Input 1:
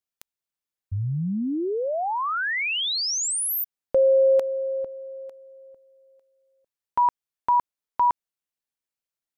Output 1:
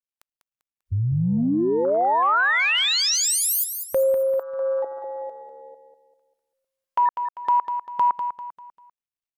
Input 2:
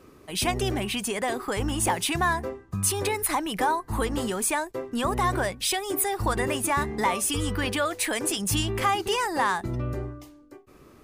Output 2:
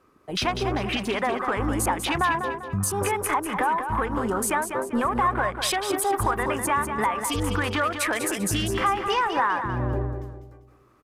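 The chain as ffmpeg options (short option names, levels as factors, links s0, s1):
-af "afwtdn=0.02,equalizer=f=1200:w=0.94:g=9.5,acompressor=threshold=0.0794:ratio=4:attack=0.28:release=701:knee=1:detection=peak,aecho=1:1:197|394|591|788:0.398|0.151|0.0575|0.0218,volume=1.58" -ar 44100 -c:a sbc -b:a 192k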